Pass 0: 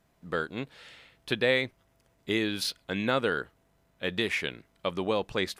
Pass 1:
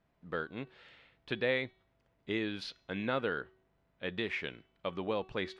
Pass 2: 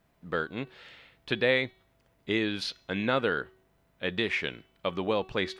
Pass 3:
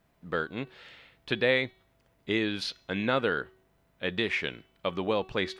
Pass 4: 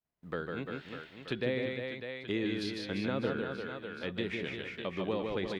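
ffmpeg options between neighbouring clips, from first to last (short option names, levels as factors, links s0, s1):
-af "lowpass=3400,bandreject=f=377:t=h:w=4,bandreject=f=754:t=h:w=4,bandreject=f=1131:t=h:w=4,bandreject=f=1508:t=h:w=4,bandreject=f=1885:t=h:w=4,bandreject=f=2262:t=h:w=4,bandreject=f=2639:t=h:w=4,bandreject=f=3016:t=h:w=4,bandreject=f=3393:t=h:w=4,bandreject=f=3770:t=h:w=4,bandreject=f=4147:t=h:w=4,bandreject=f=4524:t=h:w=4,bandreject=f=4901:t=h:w=4,bandreject=f=5278:t=h:w=4,bandreject=f=5655:t=h:w=4,bandreject=f=6032:t=h:w=4,bandreject=f=6409:t=h:w=4,bandreject=f=6786:t=h:w=4,bandreject=f=7163:t=h:w=4,bandreject=f=7540:t=h:w=4,volume=0.501"
-af "highshelf=f=5800:g=9,volume=2"
-af anull
-filter_complex "[0:a]agate=range=0.0224:threshold=0.00158:ratio=3:detection=peak,aecho=1:1:150|345|598.5|928|1356:0.631|0.398|0.251|0.158|0.1,acrossover=split=460[s0][s1];[s1]acompressor=threshold=0.0158:ratio=3[s2];[s0][s2]amix=inputs=2:normalize=0,volume=0.668"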